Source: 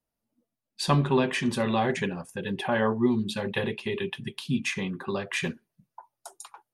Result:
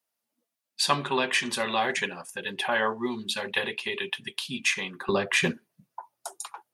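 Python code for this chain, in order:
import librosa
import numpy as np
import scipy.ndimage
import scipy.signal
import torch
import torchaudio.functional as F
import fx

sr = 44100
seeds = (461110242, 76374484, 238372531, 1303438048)

y = fx.highpass(x, sr, hz=fx.steps((0.0, 1400.0), (5.09, 210.0)), slope=6)
y = y * 10.0 ** (6.5 / 20.0)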